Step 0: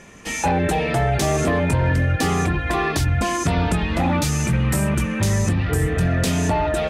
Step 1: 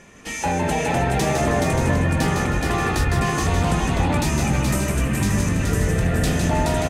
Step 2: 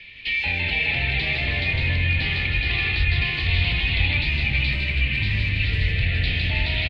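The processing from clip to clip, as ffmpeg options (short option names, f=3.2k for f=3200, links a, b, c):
-filter_complex "[0:a]asplit=2[a][b];[b]aecho=0:1:424:0.668[c];[a][c]amix=inputs=2:normalize=0,asubboost=boost=3:cutoff=59,asplit=2[d][e];[e]asplit=4[f][g][h][i];[f]adelay=157,afreqshift=70,volume=-5.5dB[j];[g]adelay=314,afreqshift=140,volume=-14.9dB[k];[h]adelay=471,afreqshift=210,volume=-24.2dB[l];[i]adelay=628,afreqshift=280,volume=-33.6dB[m];[j][k][l][m]amix=inputs=4:normalize=0[n];[d][n]amix=inputs=2:normalize=0,volume=-3dB"
-filter_complex "[0:a]lowpass=8.4k,acrossover=split=120|1300|1800[a][b][c][d];[d]alimiter=level_in=5dB:limit=-24dB:level=0:latency=1:release=203,volume=-5dB[e];[a][b][c][e]amix=inputs=4:normalize=0,firequalizer=gain_entry='entry(100,0);entry(170,-14);entry(1300,-17);entry(2200,14);entry(4300,12);entry(6100,-27)':delay=0.05:min_phase=1"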